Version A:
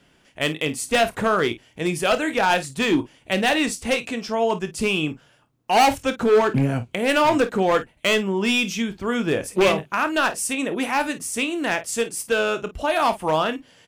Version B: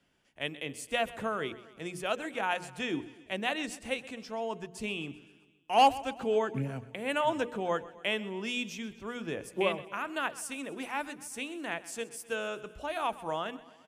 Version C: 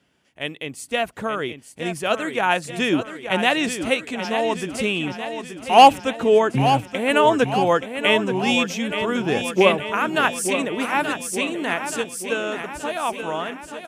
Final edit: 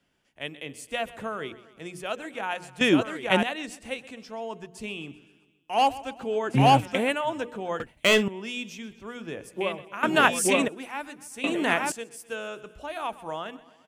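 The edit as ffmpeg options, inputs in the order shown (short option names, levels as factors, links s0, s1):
-filter_complex "[2:a]asplit=4[s0][s1][s2][s3];[1:a]asplit=6[s4][s5][s6][s7][s8][s9];[s4]atrim=end=2.812[s10];[s0]atrim=start=2.808:end=3.432[s11];[s5]atrim=start=3.428:end=6.59[s12];[s1]atrim=start=6.43:end=7.16[s13];[s6]atrim=start=7:end=7.802[s14];[0:a]atrim=start=7.798:end=8.282[s15];[s7]atrim=start=8.278:end=10.032[s16];[s2]atrim=start=10.028:end=10.682[s17];[s8]atrim=start=10.678:end=11.442[s18];[s3]atrim=start=11.438:end=11.922[s19];[s9]atrim=start=11.918[s20];[s10][s11]acrossfade=d=0.004:c1=hsin:c2=hsin[s21];[s21][s12]acrossfade=d=0.004:c1=hsin:c2=hsin[s22];[s22][s13]acrossfade=d=0.16:c1=tri:c2=tri[s23];[s23][s14]acrossfade=d=0.16:c1=tri:c2=tri[s24];[s24][s15]acrossfade=d=0.004:c1=hsin:c2=hsin[s25];[s25][s16]acrossfade=d=0.004:c1=hsin:c2=hsin[s26];[s26][s17]acrossfade=d=0.004:c1=hsin:c2=hsin[s27];[s27][s18]acrossfade=d=0.004:c1=hsin:c2=hsin[s28];[s28][s19]acrossfade=d=0.004:c1=hsin:c2=hsin[s29];[s29][s20]acrossfade=d=0.004:c1=hsin:c2=hsin"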